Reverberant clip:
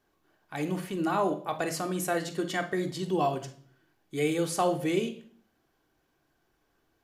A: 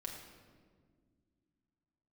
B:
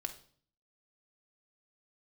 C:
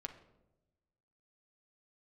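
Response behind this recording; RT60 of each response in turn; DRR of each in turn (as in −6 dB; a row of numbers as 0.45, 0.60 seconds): B; 1.8, 0.50, 1.0 seconds; −0.5, 4.0, 4.5 decibels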